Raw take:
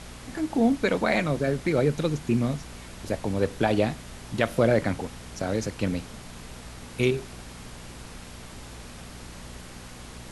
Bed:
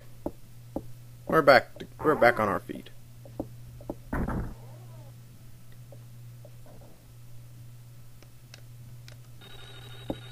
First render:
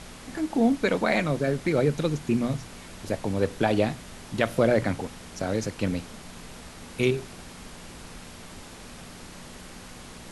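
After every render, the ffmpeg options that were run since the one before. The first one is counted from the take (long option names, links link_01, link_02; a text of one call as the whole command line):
ffmpeg -i in.wav -af "bandreject=frequency=60:width_type=h:width=4,bandreject=frequency=120:width_type=h:width=4" out.wav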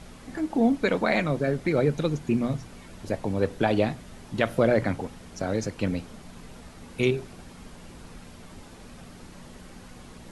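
ffmpeg -i in.wav -af "afftdn=noise_reduction=7:noise_floor=-44" out.wav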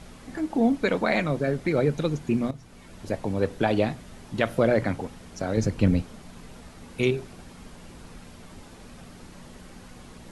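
ffmpeg -i in.wav -filter_complex "[0:a]asettb=1/sr,asplit=3[link_01][link_02][link_03];[link_01]atrim=end=5.574[link_04];[link_02]atrim=start=5.57:end=6.02,asetpts=PTS-STARTPTS,afade=type=in:duration=0.004:curve=qsin,afade=type=out:start_time=0.446:duration=0.004:curve=qsin,lowshelf=frequency=260:gain=11[link_05];[link_03]atrim=start=6.016[link_06];[link_04][link_05]acrossfade=duration=0.004:curve1=hsin:curve2=qsin[link_07];[link_07][link_06]acrossfade=duration=0.004:curve1=qsin:curve2=hsin,asplit=2[link_08][link_09];[link_08]atrim=end=2.51,asetpts=PTS-STARTPTS,afade=type=out:start_time=2.506:duration=0.004:curve=hsin:silence=0.211349[link_10];[link_09]atrim=start=2.51,asetpts=PTS-STARTPTS,afade=type=in:duration=0.67:curve=qsin:silence=0.211349[link_11];[link_10][link_11]concat=n=2:v=0:a=1" out.wav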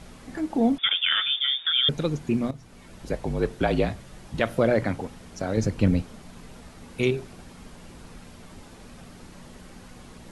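ffmpeg -i in.wav -filter_complex "[0:a]asettb=1/sr,asplit=3[link_01][link_02][link_03];[link_01]atrim=end=0.784[link_04];[link_02]atrim=start=0.78:end=1.89,asetpts=PTS-STARTPTS,afade=type=in:duration=0.004:curve=qsin,afade=type=out:start_time=1.106:duration=0.004:curve=qsin,lowpass=frequency=3100:width_type=q:width=0.5098,lowpass=frequency=3100:width_type=q:width=0.6013,lowpass=frequency=3100:width_type=q:width=0.9,lowpass=frequency=3100:width_type=q:width=2.563,afreqshift=-3700[link_05];[link_03]atrim=start=1.886[link_06];[link_04][link_05]acrossfade=duration=0.004:curve1=hsin:curve2=qsin[link_07];[link_07][link_06]acrossfade=duration=0.004:curve1=qsin:curve2=hsin,asettb=1/sr,asplit=3[link_08][link_09][link_10];[link_08]atrim=end=2.994[link_11];[link_09]atrim=start=2.99:end=4.4,asetpts=PTS-STARTPTS,afade=type=in:duration=0.004:curve=qsin,afade=type=out:start_time=1.406:duration=0.004:curve=qsin,afreqshift=-47[link_12];[link_10]atrim=start=4.396[link_13];[link_11][link_12]acrossfade=duration=0.004:curve1=hsin:curve2=qsin[link_14];[link_14][link_13]acrossfade=duration=0.004:curve1=qsin:curve2=hsin" out.wav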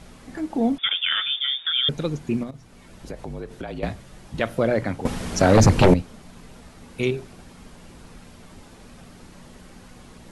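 ffmpeg -i in.wav -filter_complex "[0:a]asettb=1/sr,asplit=3[link_01][link_02][link_03];[link_01]atrim=end=2.434[link_04];[link_02]atrim=start=2.43:end=3.83,asetpts=PTS-STARTPTS,afade=type=in:duration=0.004:curve=qsin,afade=type=out:start_time=1.396:duration=0.004:curve=qsin,acompressor=threshold=-29dB:ratio=6:attack=3.2:release=140:knee=1:detection=peak[link_05];[link_03]atrim=start=3.826[link_06];[link_04][link_05]acrossfade=duration=0.004:curve1=hsin:curve2=qsin[link_07];[link_07][link_06]acrossfade=duration=0.004:curve1=qsin:curve2=hsin,asettb=1/sr,asplit=3[link_08][link_09][link_10];[link_08]atrim=end=5.054[link_11];[link_09]atrim=start=5.05:end=5.94,asetpts=PTS-STARTPTS,afade=type=in:duration=0.004:curve=qsin,afade=type=out:start_time=0.886:duration=0.004:curve=qsin,aeval=exprs='0.398*sin(PI/2*3.55*val(0)/0.398)':channel_layout=same[link_12];[link_10]atrim=start=5.936[link_13];[link_11][link_12]acrossfade=duration=0.004:curve1=hsin:curve2=qsin[link_14];[link_14][link_13]acrossfade=duration=0.004:curve1=qsin:curve2=hsin" out.wav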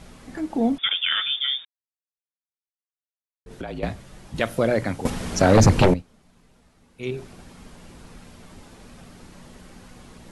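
ffmpeg -i in.wav -filter_complex "[0:a]asettb=1/sr,asplit=3[link_01][link_02][link_03];[link_01]atrim=end=4.364[link_04];[link_02]atrim=start=4.36:end=5.1,asetpts=PTS-STARTPTS,afade=type=in:duration=0.004:curve=qsin,afade=type=out:start_time=0.736:duration=0.004:curve=qsin,highshelf=frequency=4700:gain=8[link_05];[link_03]atrim=start=5.096[link_06];[link_04][link_05]acrossfade=duration=0.004:curve1=hsin:curve2=qsin[link_07];[link_07][link_06]acrossfade=duration=0.004:curve1=qsin:curve2=hsin,asplit=5[link_08][link_09][link_10][link_11][link_12];[link_08]atrim=end=1.65,asetpts=PTS-STARTPTS,afade=type=out:start_time=1.646:duration=0.004:curve=hsin[link_13];[link_09]atrim=start=1.65:end=3.46,asetpts=PTS-STARTPTS,volume=0[link_14];[link_10]atrim=start=3.46:end=6.03,asetpts=PTS-STARTPTS,afade=type=in:duration=0.004:curve=hsin,afade=type=out:start_time=2.35:duration=0.22:silence=0.223872[link_15];[link_11]atrim=start=6.03:end=7,asetpts=PTS-STARTPTS,volume=-13dB[link_16];[link_12]atrim=start=7,asetpts=PTS-STARTPTS,afade=type=in:duration=0.22:silence=0.223872[link_17];[link_13][link_14][link_15][link_16][link_17]concat=n=5:v=0:a=1" out.wav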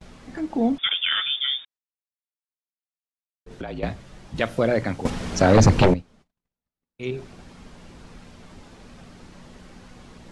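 ffmpeg -i in.wav -af "lowpass=7000,agate=range=-35dB:threshold=-51dB:ratio=16:detection=peak" out.wav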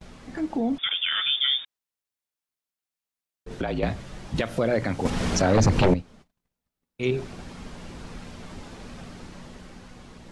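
ffmpeg -i in.wav -af "alimiter=limit=-18dB:level=0:latency=1:release=151,dynaudnorm=framelen=170:gausssize=13:maxgain=5dB" out.wav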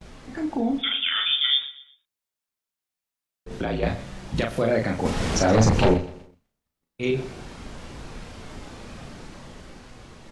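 ffmpeg -i in.wav -filter_complex "[0:a]asplit=2[link_01][link_02];[link_02]adelay=36,volume=-4dB[link_03];[link_01][link_03]amix=inputs=2:normalize=0,aecho=1:1:123|246|369:0.141|0.0523|0.0193" out.wav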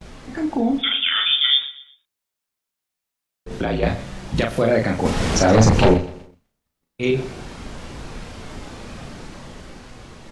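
ffmpeg -i in.wav -af "volume=4.5dB" out.wav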